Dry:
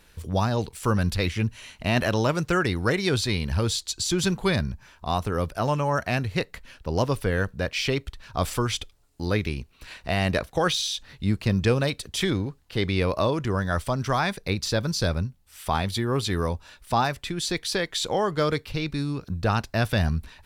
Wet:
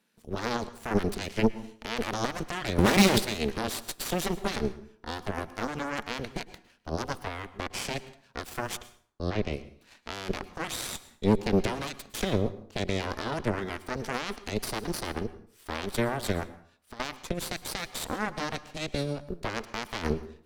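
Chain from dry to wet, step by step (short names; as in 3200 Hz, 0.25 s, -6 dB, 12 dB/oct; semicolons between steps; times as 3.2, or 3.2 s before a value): one-sided fold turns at -23.5 dBFS; HPF 160 Hz 24 dB/oct; 16.43–17 compressor 5:1, threshold -40 dBFS, peak gain reduction 17.5 dB; limiter -20 dBFS, peak gain reduction 9.5 dB; 2.78–3.18 sample leveller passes 5; bell 220 Hz +12.5 dB 0.38 oct; added harmonics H 3 -14 dB, 4 -9 dB, 7 -29 dB, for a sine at -11.5 dBFS; 8.81–9.54 air absorption 110 m; plate-style reverb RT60 0.53 s, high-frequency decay 0.75×, pre-delay 95 ms, DRR 15.5 dB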